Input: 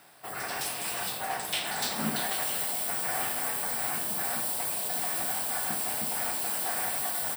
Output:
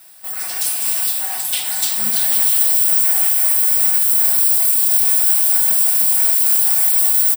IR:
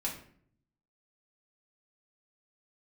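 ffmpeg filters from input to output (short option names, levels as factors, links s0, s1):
-filter_complex "[0:a]aecho=1:1:5.4:0.95,asplit=2[s0][s1];[s1]aecho=0:1:304:0.355[s2];[s0][s2]amix=inputs=2:normalize=0,crystalizer=i=7:c=0,volume=0.422"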